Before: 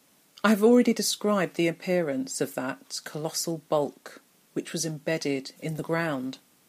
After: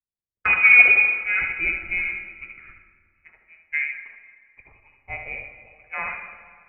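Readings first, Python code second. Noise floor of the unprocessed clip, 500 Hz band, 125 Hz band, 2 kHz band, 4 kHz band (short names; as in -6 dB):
-63 dBFS, -18.0 dB, under -10 dB, +18.0 dB, under -10 dB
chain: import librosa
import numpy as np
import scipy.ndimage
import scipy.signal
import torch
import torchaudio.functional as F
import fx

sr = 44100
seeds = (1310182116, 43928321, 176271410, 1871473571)

y = fx.freq_invert(x, sr, carrier_hz=2700)
y = fx.spec_box(y, sr, start_s=1.22, length_s=2.01, low_hz=400.0, high_hz=1300.0, gain_db=-15)
y = fx.env_lowpass(y, sr, base_hz=320.0, full_db=-17.5)
y = y + 10.0 ** (-5.5 / 20.0) * np.pad(y, (int(77 * sr / 1000.0), 0))[:len(y)]
y = fx.rev_freeverb(y, sr, rt60_s=3.7, hf_ratio=0.45, predelay_ms=75, drr_db=5.0)
y = fx.band_widen(y, sr, depth_pct=70)
y = y * librosa.db_to_amplitude(-1.0)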